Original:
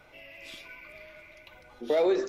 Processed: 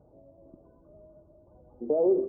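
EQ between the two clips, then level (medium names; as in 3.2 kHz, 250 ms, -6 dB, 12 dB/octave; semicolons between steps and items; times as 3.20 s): Gaussian low-pass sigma 14 samples; high-pass 43 Hz; +4.5 dB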